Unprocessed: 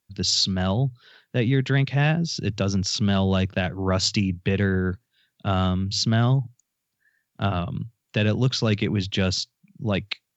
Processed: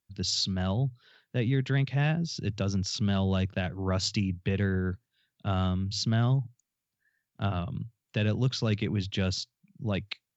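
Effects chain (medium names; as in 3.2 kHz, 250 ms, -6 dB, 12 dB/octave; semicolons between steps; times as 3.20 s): bass shelf 120 Hz +5.5 dB; trim -7.5 dB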